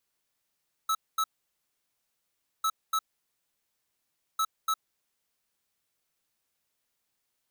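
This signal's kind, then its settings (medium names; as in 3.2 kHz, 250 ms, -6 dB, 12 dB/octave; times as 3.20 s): beep pattern square 1.3 kHz, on 0.06 s, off 0.23 s, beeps 2, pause 1.40 s, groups 3, -26.5 dBFS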